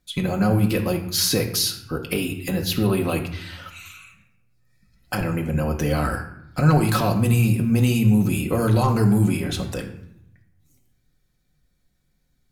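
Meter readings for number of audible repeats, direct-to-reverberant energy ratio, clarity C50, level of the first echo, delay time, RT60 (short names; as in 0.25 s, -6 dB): none, 1.0 dB, 9.0 dB, none, none, 0.80 s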